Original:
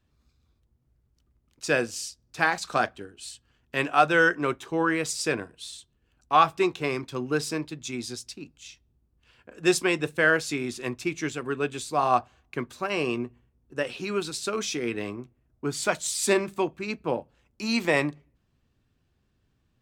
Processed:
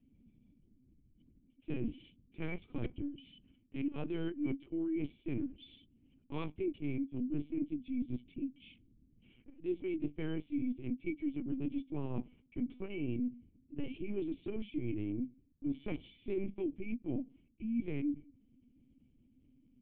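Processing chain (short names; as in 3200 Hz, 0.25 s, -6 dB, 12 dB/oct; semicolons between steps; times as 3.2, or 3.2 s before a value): vocal tract filter i; reverse; compressor 5:1, threshold -48 dBFS, peak gain reduction 18.5 dB; reverse; high shelf 2300 Hz -10.5 dB; LPC vocoder at 8 kHz pitch kept; gain +13.5 dB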